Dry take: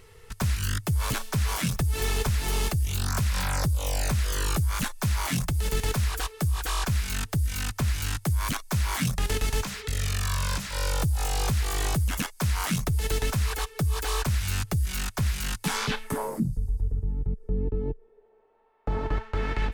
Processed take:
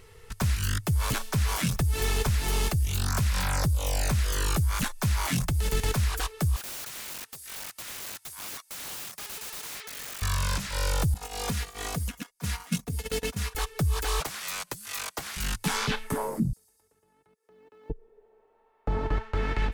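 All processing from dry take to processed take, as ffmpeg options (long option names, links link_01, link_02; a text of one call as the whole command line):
ffmpeg -i in.wav -filter_complex "[0:a]asettb=1/sr,asplit=3[link_01][link_02][link_03];[link_01]atrim=end=6.564[link_04];[link_02]atrim=start=6.56:end=10.22,asetpts=PTS-STARTPTS,afade=type=in:duration=0.004:curve=qsin,afade=type=out:start_time=3.656:duration=0.004:curve=qsin,highpass=810,aeval=exprs='(mod(44.7*val(0)+1,2)-1)/44.7':channel_layout=same[link_05];[link_03]atrim=start=10.216[link_06];[link_04][link_05]acrossfade=duration=0.004:curve1=hsin:curve2=qsin[link_07];[link_07][link_06]acrossfade=duration=0.004:curve1=qsin:curve2=hsin,asettb=1/sr,asplit=3[link_08][link_09][link_10];[link_08]atrim=end=11.144[link_11];[link_09]atrim=start=11.14:end=13.55,asetpts=PTS-STARTPTS,afade=type=in:duration=0.004:curve=qsin,afade=type=out:start_time=2.406:duration=0.004:curve=qsin,agate=range=-20dB:threshold=-26dB:ratio=16:release=100:detection=peak,highpass=92,aecho=1:1:4.2:0.59,atrim=end_sample=106281[link_12];[link_10]atrim=start=13.546[link_13];[link_11][link_12]acrossfade=duration=0.004:curve1=hsin:curve2=qsin[link_14];[link_14][link_13]acrossfade=duration=0.004:curve1=qsin:curve2=hsin,asettb=1/sr,asplit=3[link_15][link_16][link_17];[link_15]atrim=end=14.204[link_18];[link_16]atrim=start=14.2:end=15.37,asetpts=PTS-STARTPTS,afade=type=in:duration=0.004:curve=qsin,afade=type=out:start_time=1.166:duration=0.004:curve=qsin,highpass=550,afreqshift=-280[link_19];[link_17]atrim=start=15.366[link_20];[link_18][link_19]acrossfade=duration=0.004:curve1=hsin:curve2=qsin[link_21];[link_21][link_20]acrossfade=duration=0.004:curve1=qsin:curve2=hsin,asettb=1/sr,asplit=3[link_22][link_23][link_24];[link_22]atrim=end=16.534[link_25];[link_23]atrim=start=16.53:end=17.9,asetpts=PTS-STARTPTS,afade=type=in:duration=0.004:curve=qsin,afade=type=out:start_time=1.366:duration=0.004:curve=qsin,highpass=1400,acrusher=bits=8:mode=log:mix=0:aa=0.000001[link_26];[link_24]atrim=start=17.896[link_27];[link_25][link_26]acrossfade=duration=0.004:curve1=hsin:curve2=qsin[link_28];[link_28][link_27]acrossfade=duration=0.004:curve1=qsin:curve2=hsin" out.wav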